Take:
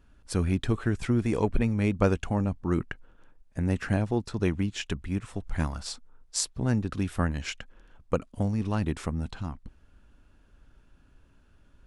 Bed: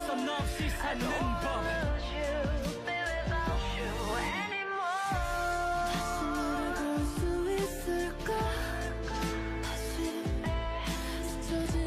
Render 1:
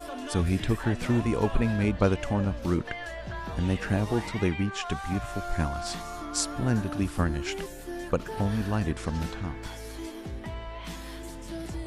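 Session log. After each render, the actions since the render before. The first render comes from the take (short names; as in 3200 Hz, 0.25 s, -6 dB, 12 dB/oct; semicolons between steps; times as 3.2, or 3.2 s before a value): add bed -4.5 dB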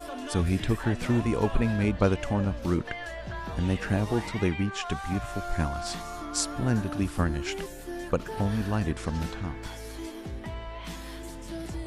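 nothing audible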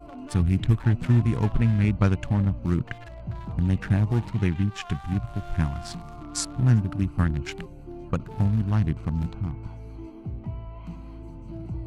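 Wiener smoothing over 25 samples; graphic EQ 125/500/2000 Hz +10/-8/+3 dB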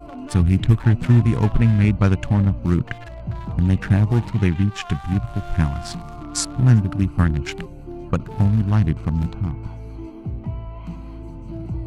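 gain +5.5 dB; limiter -3 dBFS, peak gain reduction 2.5 dB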